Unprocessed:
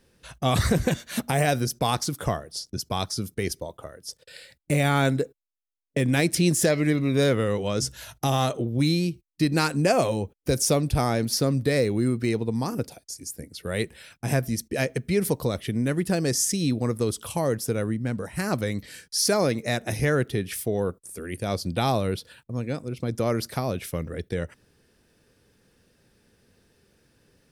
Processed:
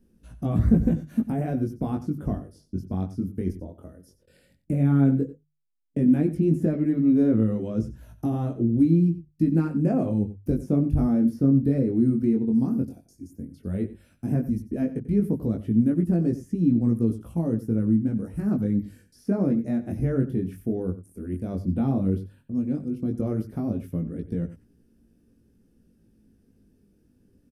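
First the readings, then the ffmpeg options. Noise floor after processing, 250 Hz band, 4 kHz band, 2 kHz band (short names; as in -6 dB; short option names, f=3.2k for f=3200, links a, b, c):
-64 dBFS, +5.5 dB, under -25 dB, under -15 dB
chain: -filter_complex "[0:a]lowshelf=f=240:g=10,bandreject=f=50:t=h:w=6,bandreject=f=100:t=h:w=6,bandreject=f=150:t=h:w=6,aresample=32000,aresample=44100,acrossover=split=2200[a][b];[b]acompressor=threshold=-49dB:ratio=5[c];[a][c]amix=inputs=2:normalize=0,flanger=delay=17.5:depth=4.8:speed=0.12,equalizer=f=125:t=o:w=1:g=-6,equalizer=f=250:t=o:w=1:g=8,equalizer=f=500:t=o:w=1:g=-6,equalizer=f=1k:t=o:w=1:g=-9,equalizer=f=2k:t=o:w=1:g=-10,equalizer=f=4k:t=o:w=1:g=-12,equalizer=f=8k:t=o:w=1:g=-7,asplit=2[d][e];[e]aecho=0:1:92:0.178[f];[d][f]amix=inputs=2:normalize=0"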